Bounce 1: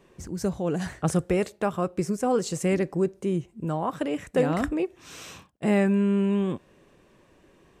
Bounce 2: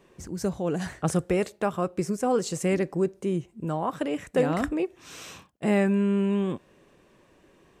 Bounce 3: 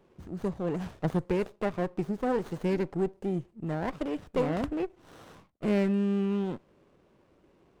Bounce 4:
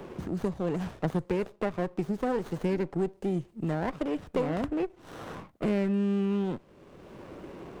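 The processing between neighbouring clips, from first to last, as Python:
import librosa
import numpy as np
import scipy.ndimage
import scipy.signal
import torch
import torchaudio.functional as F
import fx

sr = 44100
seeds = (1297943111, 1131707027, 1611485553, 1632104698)

y1 = fx.low_shelf(x, sr, hz=140.0, db=-3.5)
y2 = fx.high_shelf(y1, sr, hz=5900.0, db=-9.0)
y2 = fx.running_max(y2, sr, window=17)
y2 = y2 * 10.0 ** (-3.5 / 20.0)
y3 = fx.band_squash(y2, sr, depth_pct=70)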